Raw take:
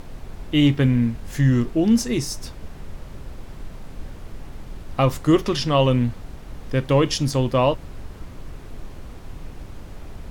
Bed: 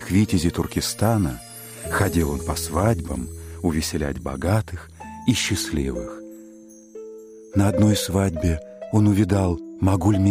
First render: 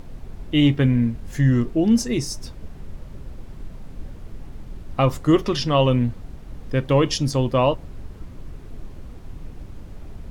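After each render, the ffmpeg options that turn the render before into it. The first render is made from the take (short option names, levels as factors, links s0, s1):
-af "afftdn=nr=6:nf=-39"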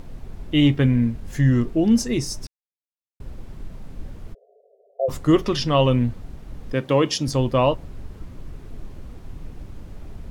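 -filter_complex "[0:a]asplit=3[s0][s1][s2];[s0]afade=t=out:st=4.33:d=0.02[s3];[s1]asuperpass=centerf=540:order=20:qfactor=1.7,afade=t=in:st=4.33:d=0.02,afade=t=out:st=5.08:d=0.02[s4];[s2]afade=t=in:st=5.08:d=0.02[s5];[s3][s4][s5]amix=inputs=3:normalize=0,asettb=1/sr,asplit=3[s6][s7][s8];[s6]atrim=end=6.734[s9];[s7]atrim=start=6.73:end=7.28,asetpts=PTS-STARTPTS,afade=t=in:d=0.004:c=qsin,afade=t=out:st=0.546:d=0.004:c=qsin,highpass=160[s10];[s8]atrim=start=7.276[s11];[s9][s10]acrossfade=d=0.004:c1=hsin:c2=qsin[s12];[s12][s11]acrossfade=d=0.004:c1=qsin:c2=hsin,asplit=3[s13][s14][s15];[s13]atrim=end=2.47,asetpts=PTS-STARTPTS,afade=t=out:st=2.466:d=0.004:c=hsin[s16];[s14]atrim=start=2.47:end=3.2,asetpts=PTS-STARTPTS,volume=0[s17];[s15]atrim=start=3.2,asetpts=PTS-STARTPTS,afade=t=in:d=0.004:c=hsin[s18];[s16][s17][s18]concat=n=3:v=0:a=1"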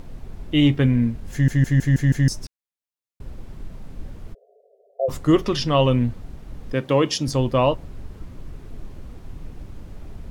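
-filter_complex "[0:a]asplit=7[s0][s1][s2][s3][s4][s5][s6];[s0]atrim=end=1.482[s7];[s1]atrim=start=1.318:end=1.482[s8];[s2]atrim=start=1.318:end=1.482[s9];[s3]atrim=start=1.318:end=1.482[s10];[s4]atrim=start=1.318:end=1.482[s11];[s5]atrim=start=1.318:end=1.482[s12];[s6]atrim=start=2.278[s13];[s7][s8]acrossfade=d=0.004:c1=hsin:c2=hsin[s14];[s14][s9]acrossfade=d=0.004:c1=hsin:c2=hsin[s15];[s15][s10]acrossfade=d=0.004:c1=hsin:c2=hsin[s16];[s16][s11]acrossfade=d=0.004:c1=hsin:c2=hsin[s17];[s17][s12]acrossfade=d=0.004:c1=hsin:c2=hsin[s18];[s18][s13]acrossfade=d=0.004:c1=hsin:c2=hsin"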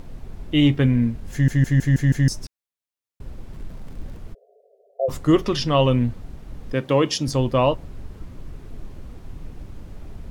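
-filter_complex "[0:a]asettb=1/sr,asplit=3[s0][s1][s2];[s0]atrim=end=3.534[s3];[s1]atrim=start=3.53:end=4.18,asetpts=PTS-STARTPTS,afade=t=in:d=0.004:c=qsin,afade=t=out:st=0.646:d=0.004:c=qsin,aeval=exprs='val(0)+0.5*0.00501*sgn(val(0))':c=same[s4];[s2]atrim=start=4.176[s5];[s3][s4]acrossfade=d=0.004:c1=hsin:c2=qsin[s6];[s6][s5]acrossfade=d=0.004:c1=qsin:c2=hsin"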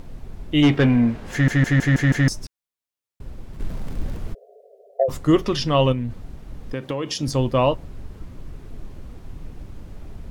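-filter_complex "[0:a]asplit=3[s0][s1][s2];[s0]afade=t=out:st=0.62:d=0.02[s3];[s1]asplit=2[s4][s5];[s5]highpass=f=720:p=1,volume=10,asoftclip=type=tanh:threshold=0.473[s6];[s4][s6]amix=inputs=2:normalize=0,lowpass=f=1900:p=1,volume=0.501,afade=t=in:st=0.62:d=0.02,afade=t=out:st=2.28:d=0.02[s7];[s2]afade=t=in:st=2.28:d=0.02[s8];[s3][s7][s8]amix=inputs=3:normalize=0,asplit=3[s9][s10][s11];[s9]afade=t=out:st=3.59:d=0.02[s12];[s10]acontrast=86,afade=t=in:st=3.59:d=0.02,afade=t=out:st=5.02:d=0.02[s13];[s11]afade=t=in:st=5.02:d=0.02[s14];[s12][s13][s14]amix=inputs=3:normalize=0,asettb=1/sr,asplit=3[s15][s16][s17];[s15]atrim=end=5.924[s18];[s16]atrim=start=5.92:end=7.23,asetpts=PTS-STARTPTS,afade=t=in:d=0.004:c=qsin,afade=t=out:st=1.306:d=0.004:c=qsin,acompressor=threshold=0.0794:ratio=6:attack=3.2:release=140:knee=1:detection=peak[s19];[s17]atrim=start=7.226[s20];[s18][s19]acrossfade=d=0.004:c1=hsin:c2=qsin[s21];[s21][s20]acrossfade=d=0.004:c1=qsin:c2=hsin"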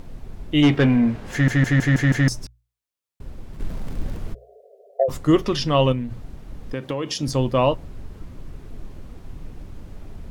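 -af "bandreject=f=60:t=h:w=6,bandreject=f=120:t=h:w=6"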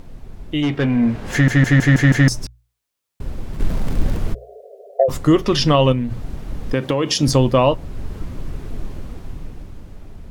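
-af "alimiter=limit=0.2:level=0:latency=1:release=425,dynaudnorm=f=110:g=21:m=2.99"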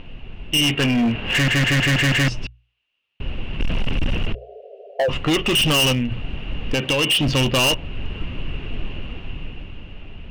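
-af "lowpass=f=2800:t=q:w=14,volume=5.96,asoftclip=hard,volume=0.168"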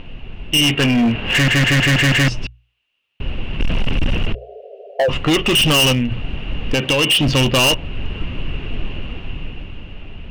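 -af "volume=1.5"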